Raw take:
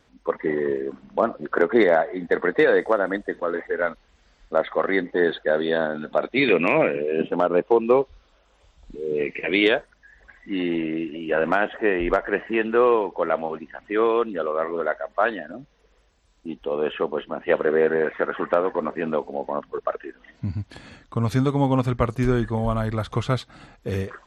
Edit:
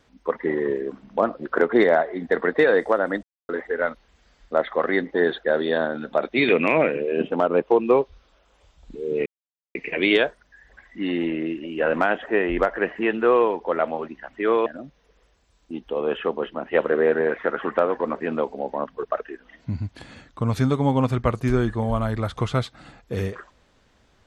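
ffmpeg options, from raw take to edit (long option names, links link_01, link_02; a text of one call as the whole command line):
ffmpeg -i in.wav -filter_complex "[0:a]asplit=5[link_01][link_02][link_03][link_04][link_05];[link_01]atrim=end=3.23,asetpts=PTS-STARTPTS,afade=type=out:start_time=3.226:duration=0.004:curve=hsin[link_06];[link_02]atrim=start=3.23:end=3.49,asetpts=PTS-STARTPTS,volume=0[link_07];[link_03]atrim=start=3.49:end=9.26,asetpts=PTS-STARTPTS,afade=type=in:duration=0.004:curve=hsin,afade=type=out:start_time=5.766:duration=0.004:curve=hsin,apad=pad_dur=0.49[link_08];[link_04]atrim=start=9.26:end=14.172,asetpts=PTS-STARTPTS,afade=type=in:duration=0.004:curve=hsin[link_09];[link_05]atrim=start=15.408[link_10];[link_06][link_07][link_08][link_09]concat=n=4:v=0:a=1[link_11];[link_11][link_10]acrossfade=duration=0.004:curve1=hsin:curve2=hsin" out.wav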